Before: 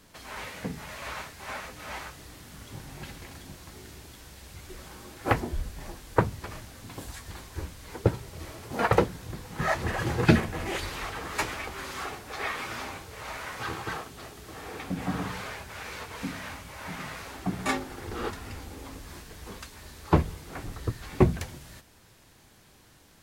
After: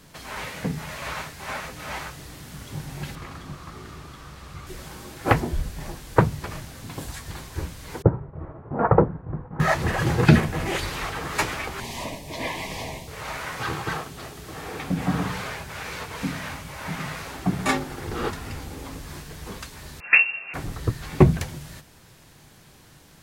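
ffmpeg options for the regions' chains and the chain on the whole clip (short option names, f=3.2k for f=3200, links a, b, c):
-filter_complex "[0:a]asettb=1/sr,asplit=3[a][b][c];[a]atrim=end=3.154[d];[b]atrim=start=3.15:end=4.67,asetpts=PTS-STARTPTS,afade=t=in:d=0.004:c=qsin,afade=t=out:st=1.516:d=0.004:c=qsin,lowpass=f=3.6k:p=1,equalizer=f=1.2k:t=o:w=0.27:g=14.5[e];[c]atrim=start=4.666[f];[d][e]acrossfade=d=0.004:c1=hsin:c2=qsin[g];[g][f]acrossfade=d=0.004:c1=qsin:c2=hsin,asettb=1/sr,asplit=3[h][i][j];[h]atrim=end=8.024[k];[i]atrim=start=8.02:end=9.6,asetpts=PTS-STARTPTS,afade=t=in:d=0.004:c=qsin,afade=t=out:st=1.576:d=0.004:c=qsin,lowpass=f=1.3k:w=0.5412,lowpass=f=1.3k:w=1.3066,agate=range=-33dB:threshold=-41dB:ratio=3:release=100:detection=peak[l];[j]atrim=start=9.596[m];[k][l]acrossfade=d=0.004:c1=hsin:c2=qsin[n];[n][m]acrossfade=d=0.004:c1=qsin:c2=hsin,asettb=1/sr,asplit=3[o][p][q];[o]atrim=end=11.804[r];[p]atrim=start=11.8:end=13.08,asetpts=PTS-STARTPTS,afade=t=in:d=0.004:c=qsin,afade=t=out:st=1.276:d=0.004:c=qsin,afreqshift=-150,asuperstop=centerf=1400:order=4:qfactor=1.5[s];[q]atrim=start=13.076[t];[r][s]acrossfade=d=0.004:c1=hsin:c2=qsin[u];[u][t]acrossfade=d=0.004:c1=qsin:c2=hsin,asettb=1/sr,asplit=3[v][w][x];[v]atrim=end=20.004[y];[w]atrim=start=20:end=20.54,asetpts=PTS-STARTPTS,afade=t=in:d=0.004:c=qsin,afade=t=out:st=0.536:d=0.004:c=qsin,asubboost=boost=10.5:cutoff=67,asplit=2[z][aa];[aa]adelay=15,volume=-5.5dB[ab];[z][ab]amix=inputs=2:normalize=0,atrim=end_sample=23814,lowpass=f=2.4k:t=q:w=0.5098,lowpass=f=2.4k:t=q:w=0.6013,lowpass=f=2.4k:t=q:w=0.9,lowpass=f=2.4k:t=q:w=2.563,afreqshift=-2800[ac];[x]atrim=start=20.536[ad];[y][ac]acrossfade=d=0.004:c1=hsin:c2=qsin[ae];[ae][ad]acrossfade=d=0.004:c1=qsin:c2=hsin,equalizer=f=150:w=4.8:g=8.5,alimiter=level_in=6dB:limit=-1dB:release=50:level=0:latency=1,volume=-1dB"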